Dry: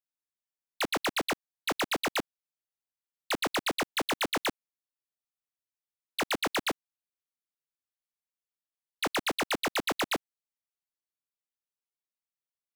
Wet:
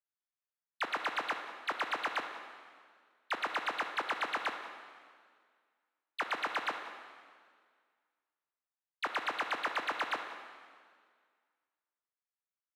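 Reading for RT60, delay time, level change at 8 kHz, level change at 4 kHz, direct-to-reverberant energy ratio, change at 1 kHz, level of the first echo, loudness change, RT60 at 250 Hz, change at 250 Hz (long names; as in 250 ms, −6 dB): 1.9 s, 187 ms, −17.0 dB, −9.0 dB, 6.0 dB, −1.0 dB, −17.0 dB, −5.0 dB, 1.9 s, −14.5 dB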